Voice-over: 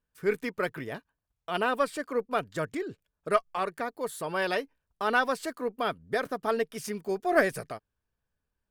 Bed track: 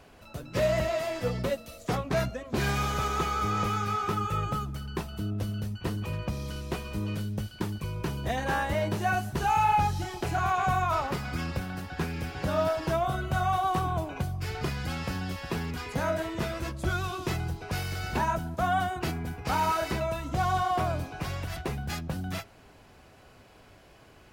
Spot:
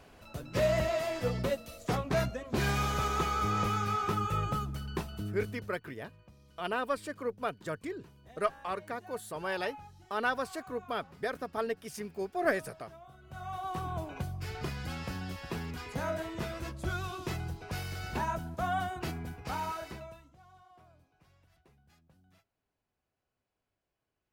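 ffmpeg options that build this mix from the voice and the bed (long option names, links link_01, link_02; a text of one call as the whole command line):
ffmpeg -i stem1.wav -i stem2.wav -filter_complex "[0:a]adelay=5100,volume=-5.5dB[link_01];[1:a]volume=17.5dB,afade=type=out:start_time=4.97:duration=0.84:silence=0.0707946,afade=type=in:start_time=13.21:duration=0.87:silence=0.105925,afade=type=out:start_time=19.2:duration=1.15:silence=0.0473151[link_02];[link_01][link_02]amix=inputs=2:normalize=0" out.wav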